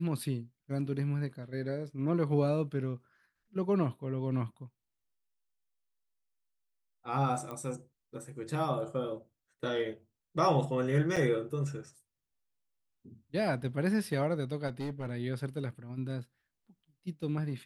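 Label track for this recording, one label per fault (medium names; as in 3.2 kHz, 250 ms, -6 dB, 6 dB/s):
7.510000	7.510000	pop -27 dBFS
11.160000	11.170000	dropout 6.3 ms
14.670000	15.120000	clipped -32 dBFS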